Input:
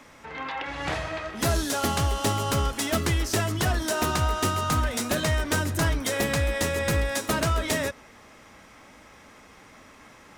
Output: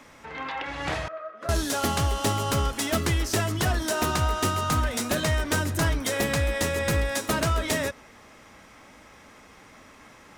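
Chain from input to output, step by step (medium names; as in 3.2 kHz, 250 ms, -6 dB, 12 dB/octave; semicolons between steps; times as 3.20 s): 1.08–1.49 s: two resonant band-passes 870 Hz, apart 1 oct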